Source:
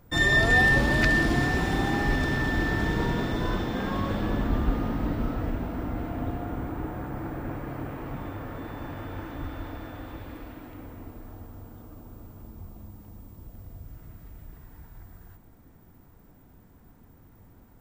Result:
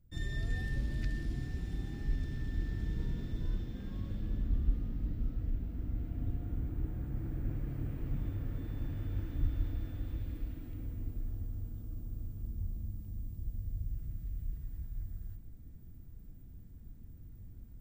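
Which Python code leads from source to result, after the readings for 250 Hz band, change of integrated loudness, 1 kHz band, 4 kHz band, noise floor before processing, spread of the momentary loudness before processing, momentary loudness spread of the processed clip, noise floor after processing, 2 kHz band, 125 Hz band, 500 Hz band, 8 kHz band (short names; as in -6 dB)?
-14.0 dB, -13.0 dB, -28.0 dB, under -20 dB, -55 dBFS, 24 LU, 17 LU, -51 dBFS, -26.0 dB, -5.5 dB, -20.5 dB, n/a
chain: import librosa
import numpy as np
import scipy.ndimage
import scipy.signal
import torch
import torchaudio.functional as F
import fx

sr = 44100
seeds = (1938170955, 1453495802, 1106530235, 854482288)

y = fx.tone_stack(x, sr, knobs='10-0-1')
y = fx.rider(y, sr, range_db=10, speed_s=2.0)
y = y * 10.0 ** (3.5 / 20.0)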